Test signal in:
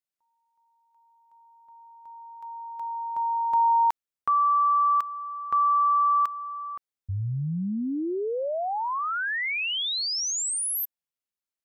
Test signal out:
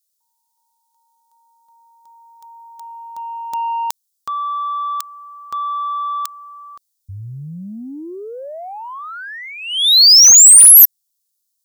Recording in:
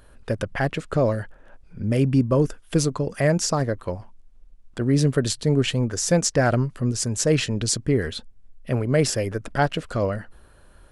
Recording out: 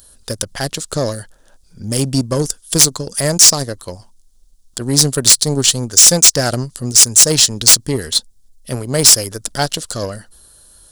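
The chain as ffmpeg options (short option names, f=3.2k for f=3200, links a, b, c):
-af "aexciter=amount=12.3:drive=3.2:freq=3.6k,aeval=exprs='5.01*sin(PI/2*5.62*val(0)/5.01)':c=same,aeval=exprs='5.01*(cos(1*acos(clip(val(0)/5.01,-1,1)))-cos(1*PI/2))+0.316*(cos(7*acos(clip(val(0)/5.01,-1,1)))-cos(7*PI/2))':c=same,volume=-16dB"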